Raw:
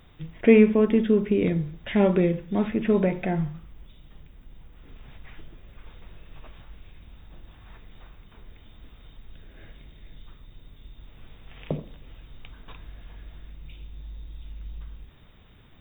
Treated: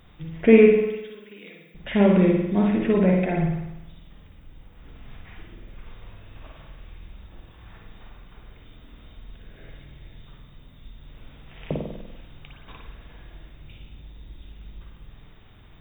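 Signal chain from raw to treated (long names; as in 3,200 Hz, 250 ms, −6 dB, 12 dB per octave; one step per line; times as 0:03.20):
0:00.73–0:01.75: first difference
convolution reverb RT60 0.95 s, pre-delay 49 ms, DRR −0.5 dB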